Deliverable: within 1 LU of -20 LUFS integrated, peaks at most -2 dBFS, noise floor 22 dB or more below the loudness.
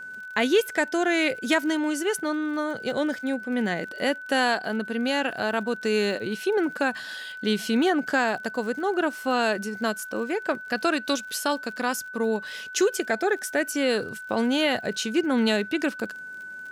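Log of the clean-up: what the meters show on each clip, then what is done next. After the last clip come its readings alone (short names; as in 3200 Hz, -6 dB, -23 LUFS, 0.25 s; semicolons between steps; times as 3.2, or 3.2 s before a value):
ticks 45/s; steady tone 1500 Hz; tone level -36 dBFS; loudness -25.5 LUFS; peak -9.5 dBFS; loudness target -20.0 LUFS
-> de-click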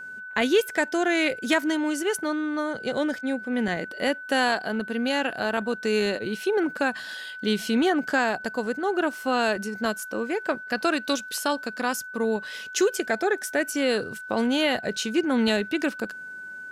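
ticks 0.060/s; steady tone 1500 Hz; tone level -36 dBFS
-> notch 1500 Hz, Q 30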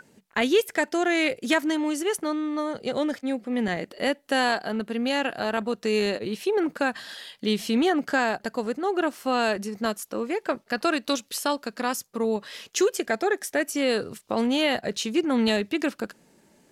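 steady tone none; loudness -26.0 LUFS; peak -10.0 dBFS; loudness target -20.0 LUFS
-> gain +6 dB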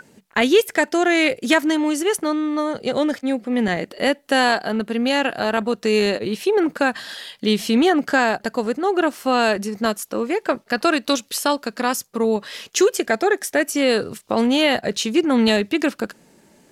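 loudness -20.0 LUFS; peak -4.0 dBFS; noise floor -55 dBFS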